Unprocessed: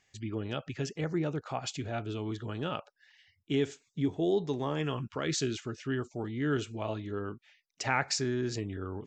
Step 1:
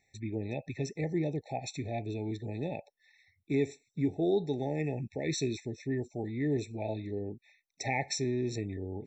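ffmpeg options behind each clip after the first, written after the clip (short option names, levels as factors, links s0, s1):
-af "afftfilt=real='re*eq(mod(floor(b*sr/1024/880),2),0)':imag='im*eq(mod(floor(b*sr/1024/880),2),0)':win_size=1024:overlap=0.75"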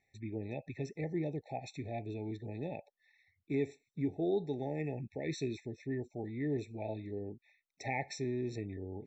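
-af "bass=f=250:g=-1,treble=f=4000:g=-9,volume=0.631"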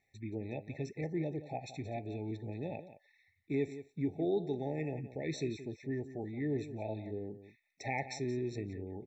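-filter_complex "[0:a]asplit=2[s0][s1];[s1]adelay=174.9,volume=0.224,highshelf=f=4000:g=-3.94[s2];[s0][s2]amix=inputs=2:normalize=0"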